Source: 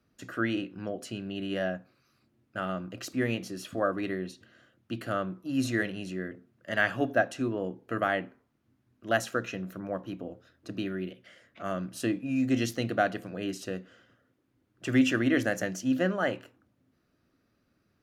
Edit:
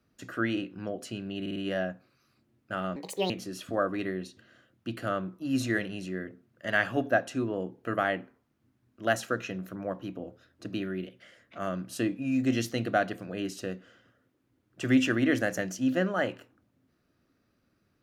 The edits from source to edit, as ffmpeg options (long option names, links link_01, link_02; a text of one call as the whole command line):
ffmpeg -i in.wav -filter_complex "[0:a]asplit=6[link_01][link_02][link_03][link_04][link_05][link_06];[link_01]atrim=end=1.462[link_07];[link_02]atrim=start=1.408:end=1.462[link_08];[link_03]atrim=start=1.408:end=1.462[link_09];[link_04]atrim=start=1.408:end=2.814[link_10];[link_05]atrim=start=2.81:end=3.34,asetpts=PTS-STARTPTS,asetrate=68796,aresample=44100[link_11];[link_06]atrim=start=3.336[link_12];[link_07][link_08]acrossfade=duration=0.004:curve1=hsin:curve2=hsin[link_13];[link_13][link_09]acrossfade=duration=0.004:curve1=hsin:curve2=hsin[link_14];[link_14][link_10]acrossfade=duration=0.004:curve1=hsin:curve2=hsin[link_15];[link_15][link_11]acrossfade=duration=0.004:curve1=hsin:curve2=hsin[link_16];[link_16][link_12]acrossfade=duration=0.004:curve1=hsin:curve2=hsin" out.wav